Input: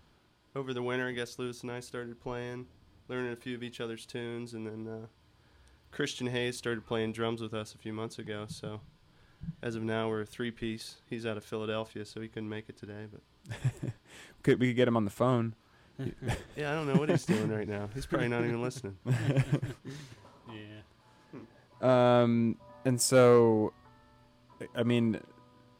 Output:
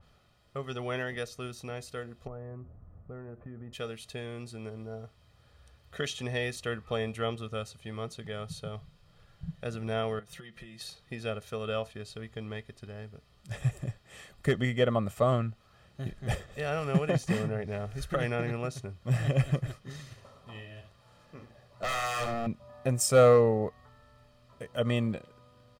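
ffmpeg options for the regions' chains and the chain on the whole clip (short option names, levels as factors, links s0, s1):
-filter_complex "[0:a]asettb=1/sr,asplit=3[s0][s1][s2];[s0]atrim=end=2.274[s3];[s1]atrim=start=2.27:end=3.73,asetpts=PTS-STARTPTS,afade=t=in:d=0.004:c=qsin,afade=t=out:st=1.456:d=0.004:c=qsin,lowpass=f=1400:w=0.5412,lowpass=f=1400:w=1.3066,lowshelf=f=420:g=7.5,acompressor=threshold=0.01:ratio=4:attack=3.2:release=140:knee=1:detection=peak[s4];[s2]atrim=start=3.726[s5];[s3][s4]acrossfade=d=0.004:c1=hsin:c2=qsin[s6];[s6][s5]acrossfade=d=0.004:c1=qsin:c2=hsin,asettb=1/sr,asplit=3[s7][s8][s9];[s7]atrim=end=10.194[s10];[s8]atrim=start=10.19:end=10.81,asetpts=PTS-STARTPTS,afade=t=in:d=0.004:c=qsin,afade=t=out:st=0.616:d=0.004:c=qsin,acompressor=threshold=0.00562:ratio=6:attack=3.2:release=140:knee=1:detection=peak,highpass=43,aecho=1:1:5.8:0.75,atrim=end_sample=27342[s11];[s9]atrim=start=10.806[s12];[s10][s11]acrossfade=d=0.004:c1=hsin:c2=qsin[s13];[s13][s12]acrossfade=d=0.004:c1=qsin:c2=hsin,asettb=1/sr,asplit=3[s14][s15][s16];[s14]atrim=end=19.994[s17];[s15]atrim=start=19.99:end=22.47,asetpts=PTS-STARTPTS,afade=t=in:d=0.004:c=qsin,afade=t=out:st=2.476:d=0.004:c=qsin,aeval=exprs='0.0355*(abs(mod(val(0)/0.0355+3,4)-2)-1)':c=same,aecho=1:1:73:0.355,atrim=end_sample=109368[s18];[s16]atrim=start=22.466[s19];[s17][s18]acrossfade=d=0.004:c1=hsin:c2=qsin[s20];[s20][s19]acrossfade=d=0.004:c1=qsin:c2=hsin,aecho=1:1:1.6:0.65,adynamicequalizer=threshold=0.00501:dfrequency=2900:dqfactor=0.7:tfrequency=2900:tqfactor=0.7:attack=5:release=100:ratio=0.375:range=1.5:mode=cutabove:tftype=highshelf"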